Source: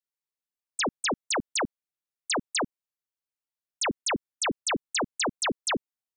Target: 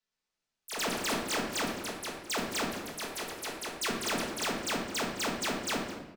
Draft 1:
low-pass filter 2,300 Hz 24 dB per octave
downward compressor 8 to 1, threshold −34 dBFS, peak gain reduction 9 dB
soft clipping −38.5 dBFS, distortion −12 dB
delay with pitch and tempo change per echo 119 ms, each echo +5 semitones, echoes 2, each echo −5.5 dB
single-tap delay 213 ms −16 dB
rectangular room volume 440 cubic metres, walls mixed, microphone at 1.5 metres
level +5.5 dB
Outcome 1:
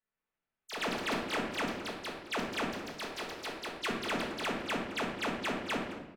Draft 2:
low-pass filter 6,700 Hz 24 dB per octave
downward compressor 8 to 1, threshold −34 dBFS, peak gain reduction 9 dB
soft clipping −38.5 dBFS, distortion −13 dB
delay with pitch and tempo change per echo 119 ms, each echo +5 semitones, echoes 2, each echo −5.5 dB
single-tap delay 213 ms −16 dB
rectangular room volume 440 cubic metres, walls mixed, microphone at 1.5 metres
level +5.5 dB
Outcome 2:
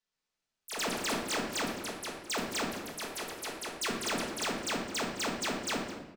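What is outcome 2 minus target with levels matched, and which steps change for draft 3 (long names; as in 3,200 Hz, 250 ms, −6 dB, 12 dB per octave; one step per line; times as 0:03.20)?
downward compressor: peak gain reduction +9 dB
remove: downward compressor 8 to 1, threshold −34 dBFS, peak gain reduction 9 dB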